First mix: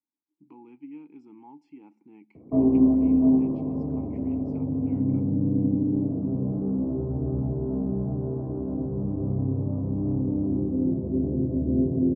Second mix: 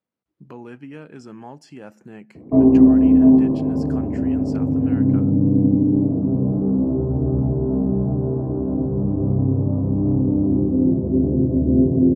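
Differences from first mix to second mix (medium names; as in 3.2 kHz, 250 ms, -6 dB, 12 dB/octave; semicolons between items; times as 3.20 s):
speech: remove vowel filter u; background +7.5 dB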